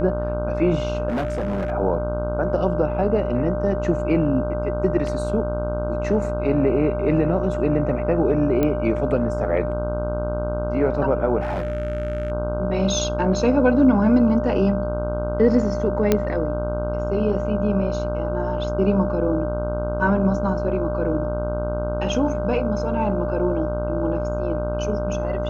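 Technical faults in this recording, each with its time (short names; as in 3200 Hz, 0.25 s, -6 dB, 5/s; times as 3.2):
buzz 60 Hz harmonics 26 -27 dBFS
tone 600 Hz -26 dBFS
1.08–1.72 clipped -20.5 dBFS
8.63 pop -10 dBFS
11.4–12.32 clipped -21 dBFS
16.12 pop -4 dBFS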